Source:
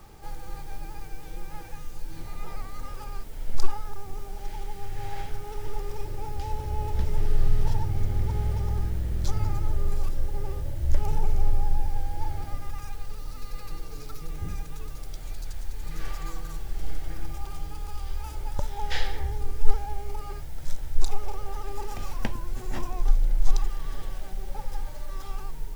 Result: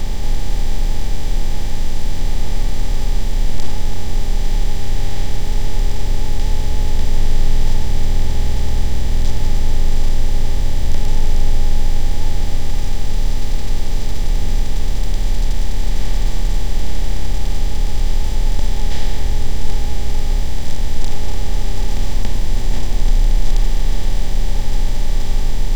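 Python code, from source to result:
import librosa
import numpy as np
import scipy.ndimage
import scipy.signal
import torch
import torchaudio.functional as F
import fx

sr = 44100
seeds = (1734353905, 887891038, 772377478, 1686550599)

y = fx.bin_compress(x, sr, power=0.2)
y = fx.peak_eq(y, sr, hz=1300.0, db=-10.0, octaves=1.3)
y = y * librosa.db_to_amplitude(-1.0)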